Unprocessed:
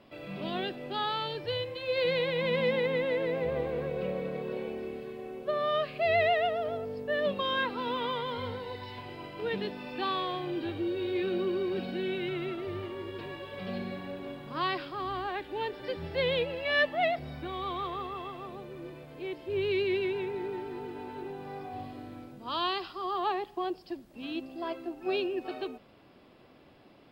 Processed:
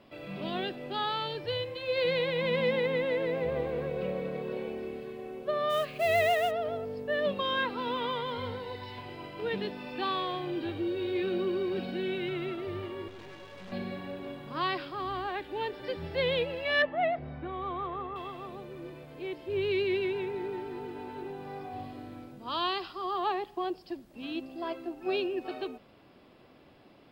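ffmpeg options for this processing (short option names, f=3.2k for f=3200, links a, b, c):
-filter_complex "[0:a]asplit=3[a][b][c];[a]afade=t=out:st=5.69:d=0.02[d];[b]acrusher=bits=5:mode=log:mix=0:aa=0.000001,afade=t=in:st=5.69:d=0.02,afade=t=out:st=6.5:d=0.02[e];[c]afade=t=in:st=6.5:d=0.02[f];[d][e][f]amix=inputs=3:normalize=0,asettb=1/sr,asplit=3[g][h][i];[g]atrim=end=13.084[j];[h]atrim=start=13.08:end=13.72,asetpts=PTS-STARTPTS,afade=t=in:d=0.004:c=qsin,afade=t=out:st=0.636:d=0.004:c=qsin,aeval=exprs='(tanh(158*val(0)+0.8)-tanh(0.8))/158':c=same[k];[i]atrim=start=13.716[l];[j][k]acrossfade=d=0.004:c1=hsin:c2=qsin[m];[m][l]acrossfade=d=0.004:c1=qsin:c2=hsin,asettb=1/sr,asplit=3[n][o][p];[n]atrim=end=16.824[q];[o]atrim=start=16.82:end=18.16,asetpts=PTS-STARTPTS,afade=t=in:d=0.004:c=qsin,afade=t=out:st=1.336:d=0.004:c=qsin,lowpass=1.9k[r];[p]atrim=start=18.156[s];[q][r]acrossfade=d=0.004:c1=hsin:c2=qsin[t];[t][s]acrossfade=d=0.004:c1=qsin:c2=hsin"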